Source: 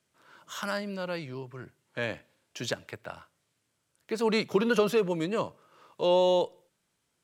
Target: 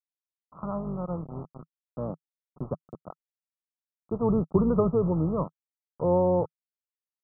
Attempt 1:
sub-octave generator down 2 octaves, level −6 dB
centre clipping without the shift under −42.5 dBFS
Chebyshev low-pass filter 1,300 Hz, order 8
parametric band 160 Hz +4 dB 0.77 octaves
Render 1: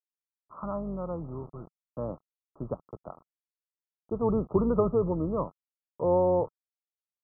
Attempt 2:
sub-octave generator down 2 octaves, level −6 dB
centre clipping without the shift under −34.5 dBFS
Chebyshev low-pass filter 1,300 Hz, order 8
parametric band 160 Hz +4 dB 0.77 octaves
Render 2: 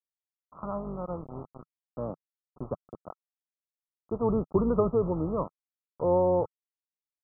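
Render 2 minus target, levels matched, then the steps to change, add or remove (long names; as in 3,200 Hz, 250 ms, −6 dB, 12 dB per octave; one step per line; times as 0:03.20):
125 Hz band −3.0 dB
change: parametric band 160 Hz +11.5 dB 0.77 octaves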